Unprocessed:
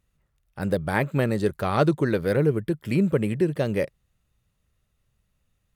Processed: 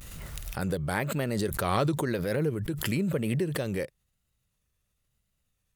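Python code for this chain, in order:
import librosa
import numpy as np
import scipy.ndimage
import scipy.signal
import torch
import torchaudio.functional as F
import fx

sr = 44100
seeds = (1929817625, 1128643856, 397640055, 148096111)

y = fx.vibrato(x, sr, rate_hz=1.0, depth_cents=83.0)
y = fx.high_shelf(y, sr, hz=3400.0, db=8.5)
y = fx.pre_swell(y, sr, db_per_s=24.0)
y = y * librosa.db_to_amplitude(-8.0)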